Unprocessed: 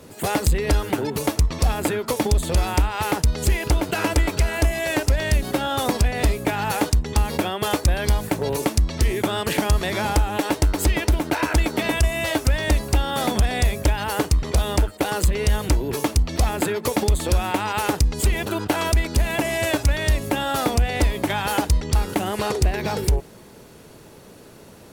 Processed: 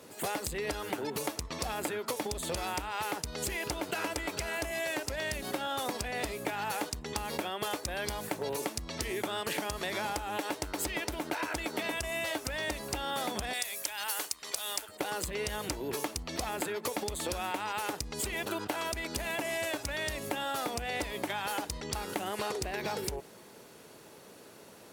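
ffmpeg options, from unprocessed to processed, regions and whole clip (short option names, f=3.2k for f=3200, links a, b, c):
-filter_complex "[0:a]asettb=1/sr,asplit=3[a][b][c];[a]atrim=end=13.534[d];[b]atrim=start=13.53:end=14.89,asetpts=PTS-STARTPTS,afade=t=in:d=0.004:c=qsin,afade=t=out:st=1.356:d=0.004:c=qsin,highpass=f=1.4k:p=1,aemphasis=mode=production:type=cd[e];[c]atrim=start=14.886[f];[d][e]acrossfade=d=0.004:c1=hsin:c2=qsin[g];[g][f]acrossfade=d=0.004:c1=qsin:c2=hsin,highpass=f=180:p=1,lowshelf=f=290:g=-6,acompressor=threshold=-26dB:ratio=6,volume=-4.5dB"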